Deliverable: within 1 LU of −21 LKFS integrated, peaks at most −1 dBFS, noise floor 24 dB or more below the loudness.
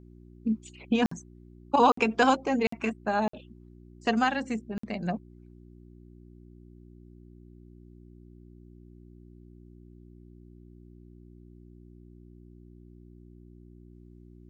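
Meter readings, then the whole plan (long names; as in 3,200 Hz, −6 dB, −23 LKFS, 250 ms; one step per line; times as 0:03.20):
number of dropouts 5; longest dropout 54 ms; mains hum 60 Hz; hum harmonics up to 360 Hz; level of the hum −49 dBFS; integrated loudness −27.5 LKFS; sample peak −8.0 dBFS; target loudness −21.0 LKFS
→ repair the gap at 0:01.06/0:01.92/0:02.67/0:03.28/0:04.78, 54 ms
hum removal 60 Hz, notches 6
level +6.5 dB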